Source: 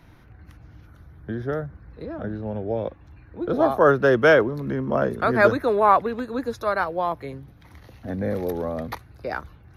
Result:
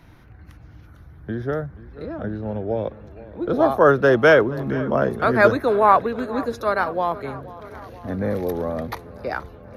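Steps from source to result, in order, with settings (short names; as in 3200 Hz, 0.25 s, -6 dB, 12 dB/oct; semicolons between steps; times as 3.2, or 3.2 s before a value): darkening echo 0.479 s, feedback 68%, low-pass 4400 Hz, level -18 dB; gain +2 dB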